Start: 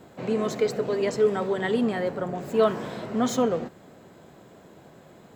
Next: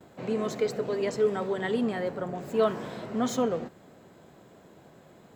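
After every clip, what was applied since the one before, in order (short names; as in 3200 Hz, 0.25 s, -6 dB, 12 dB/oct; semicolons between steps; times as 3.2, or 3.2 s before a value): gate with hold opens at -47 dBFS; gain -3.5 dB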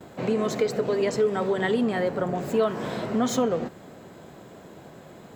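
compressor 2.5:1, threshold -30 dBFS, peak gain reduction 8 dB; gain +8 dB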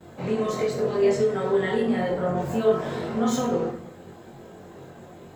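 plate-style reverb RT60 0.74 s, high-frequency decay 0.6×, DRR -1.5 dB; chorus voices 6, 0.86 Hz, delay 22 ms, depth 1.5 ms; gain -1.5 dB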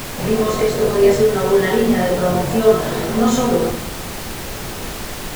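added noise pink -36 dBFS; gain +8 dB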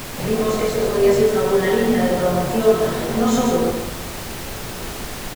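echo 0.141 s -6 dB; gain -3 dB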